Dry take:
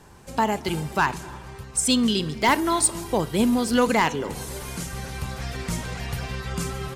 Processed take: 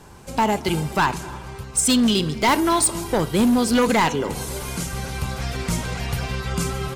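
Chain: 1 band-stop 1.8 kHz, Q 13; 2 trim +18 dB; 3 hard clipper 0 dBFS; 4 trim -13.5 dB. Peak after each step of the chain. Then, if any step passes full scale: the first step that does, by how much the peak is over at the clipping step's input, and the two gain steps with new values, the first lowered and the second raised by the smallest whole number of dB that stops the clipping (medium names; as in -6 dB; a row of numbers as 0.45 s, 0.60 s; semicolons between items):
-10.5 dBFS, +7.5 dBFS, 0.0 dBFS, -13.5 dBFS; step 2, 7.5 dB; step 2 +10 dB, step 4 -5.5 dB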